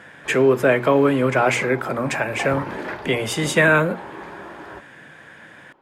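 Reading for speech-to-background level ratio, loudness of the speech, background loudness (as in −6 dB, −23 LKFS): 15.0 dB, −19.5 LKFS, −34.5 LKFS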